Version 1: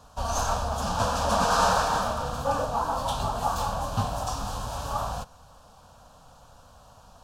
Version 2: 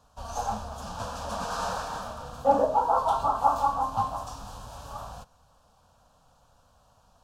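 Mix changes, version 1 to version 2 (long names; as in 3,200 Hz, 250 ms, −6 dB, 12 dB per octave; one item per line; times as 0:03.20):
speech: send +7.5 dB
background −9.5 dB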